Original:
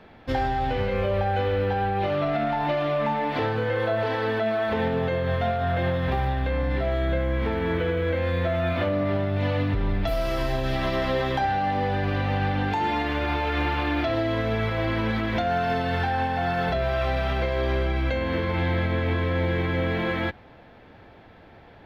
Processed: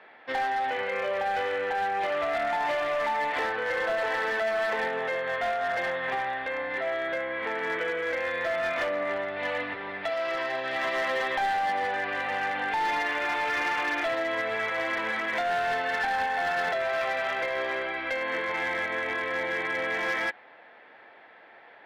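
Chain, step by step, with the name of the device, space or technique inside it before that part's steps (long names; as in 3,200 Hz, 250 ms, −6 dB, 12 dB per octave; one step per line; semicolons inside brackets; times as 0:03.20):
megaphone (band-pass filter 580–3,400 Hz; parametric band 1,900 Hz +7 dB 0.45 octaves; hard clipping −23 dBFS, distortion −18 dB)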